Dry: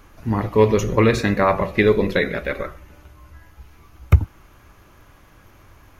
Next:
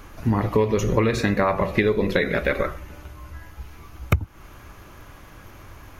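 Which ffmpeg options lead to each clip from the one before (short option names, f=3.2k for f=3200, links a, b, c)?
-af "acompressor=threshold=-22dB:ratio=8,volume=5.5dB"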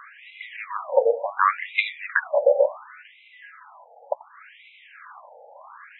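-af "highshelf=f=7k:g=-11.5,afftfilt=real='re*between(b*sr/1024,620*pow(2900/620,0.5+0.5*sin(2*PI*0.69*pts/sr))/1.41,620*pow(2900/620,0.5+0.5*sin(2*PI*0.69*pts/sr))*1.41)':imag='im*between(b*sr/1024,620*pow(2900/620,0.5+0.5*sin(2*PI*0.69*pts/sr))/1.41,620*pow(2900/620,0.5+0.5*sin(2*PI*0.69*pts/sr))*1.41)':win_size=1024:overlap=0.75,volume=8.5dB"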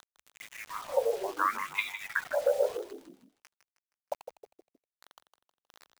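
-filter_complex "[0:a]acrusher=bits=5:mix=0:aa=0.000001,asplit=5[a][b][c][d][e];[b]adelay=157,afreqshift=-78,volume=-10dB[f];[c]adelay=314,afreqshift=-156,volume=-18dB[g];[d]adelay=471,afreqshift=-234,volume=-25.9dB[h];[e]adelay=628,afreqshift=-312,volume=-33.9dB[i];[a][f][g][h][i]amix=inputs=5:normalize=0,volume=-9dB"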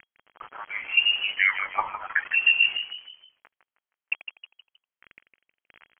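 -af "lowpass=f=2.8k:t=q:w=0.5098,lowpass=f=2.8k:t=q:w=0.6013,lowpass=f=2.8k:t=q:w=0.9,lowpass=f=2.8k:t=q:w=2.563,afreqshift=-3300,volume=6.5dB"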